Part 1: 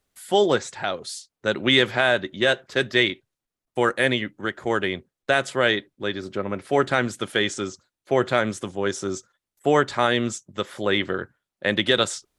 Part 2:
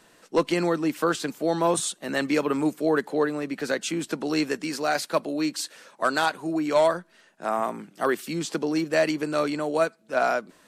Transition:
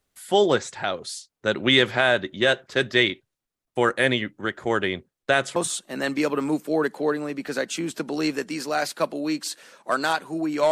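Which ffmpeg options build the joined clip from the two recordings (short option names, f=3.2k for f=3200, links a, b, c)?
-filter_complex "[0:a]apad=whole_dur=10.71,atrim=end=10.71,atrim=end=5.562[a];[1:a]atrim=start=1.688:end=6.84[b];[a][b]acrossfade=d=0.004:c1=hsin:c2=hsin"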